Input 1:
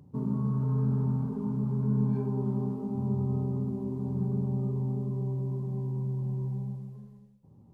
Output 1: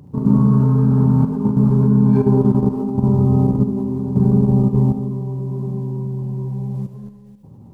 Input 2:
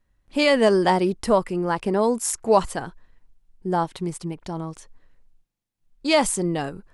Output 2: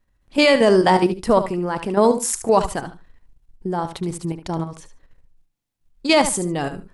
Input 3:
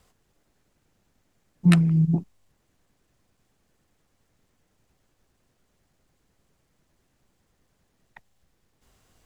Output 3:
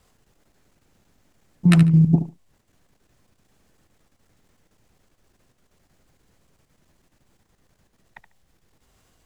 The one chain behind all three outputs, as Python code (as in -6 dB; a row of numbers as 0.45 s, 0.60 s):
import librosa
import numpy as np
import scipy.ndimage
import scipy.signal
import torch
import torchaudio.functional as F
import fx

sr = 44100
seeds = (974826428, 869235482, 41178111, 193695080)

p1 = fx.level_steps(x, sr, step_db=10)
p2 = p1 + fx.echo_feedback(p1, sr, ms=73, feedback_pct=18, wet_db=-11, dry=0)
y = p2 * 10.0 ** (-3 / 20.0) / np.max(np.abs(p2))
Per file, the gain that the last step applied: +18.0 dB, +6.5 dB, +8.0 dB